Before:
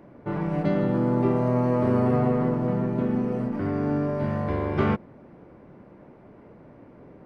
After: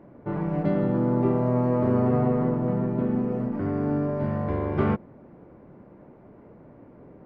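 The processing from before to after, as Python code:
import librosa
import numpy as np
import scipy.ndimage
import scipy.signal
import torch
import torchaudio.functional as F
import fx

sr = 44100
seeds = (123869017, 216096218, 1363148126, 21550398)

y = fx.high_shelf(x, sr, hz=2500.0, db=-11.5)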